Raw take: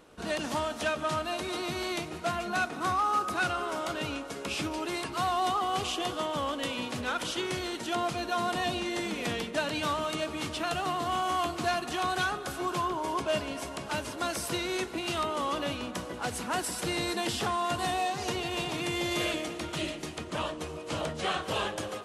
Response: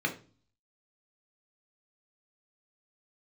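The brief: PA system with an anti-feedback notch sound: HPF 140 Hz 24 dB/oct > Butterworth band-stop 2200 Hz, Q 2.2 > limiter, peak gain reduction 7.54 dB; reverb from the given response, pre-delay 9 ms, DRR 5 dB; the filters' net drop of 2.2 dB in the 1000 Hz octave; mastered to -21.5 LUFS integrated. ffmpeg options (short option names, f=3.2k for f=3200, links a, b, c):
-filter_complex "[0:a]equalizer=f=1k:t=o:g=-3,asplit=2[a][b];[1:a]atrim=start_sample=2205,adelay=9[c];[b][c]afir=irnorm=-1:irlink=0,volume=-13dB[d];[a][d]amix=inputs=2:normalize=0,highpass=f=140:w=0.5412,highpass=f=140:w=1.3066,asuperstop=centerf=2200:order=8:qfactor=2.2,volume=12dB,alimiter=limit=-12.5dB:level=0:latency=1"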